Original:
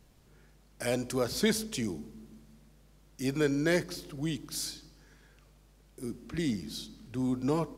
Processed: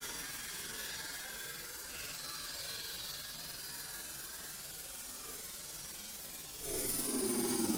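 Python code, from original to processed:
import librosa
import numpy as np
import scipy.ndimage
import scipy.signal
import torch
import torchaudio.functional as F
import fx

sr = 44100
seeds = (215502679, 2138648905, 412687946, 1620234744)

p1 = fx.riaa(x, sr, side='recording')
p2 = fx.over_compress(p1, sr, threshold_db=-38.0, ratio=-1.0)
p3 = fx.tube_stage(p2, sr, drive_db=44.0, bias=0.6)
p4 = p3 + fx.echo_stepped(p3, sr, ms=367, hz=1300.0, octaves=1.4, feedback_pct=70, wet_db=-4.5, dry=0)
p5 = fx.paulstretch(p4, sr, seeds[0], factor=7.9, window_s=0.05, from_s=5.13)
p6 = fx.granulator(p5, sr, seeds[1], grain_ms=100.0, per_s=20.0, spray_ms=13.0, spread_st=0)
y = F.gain(torch.from_numpy(p6), 12.5).numpy()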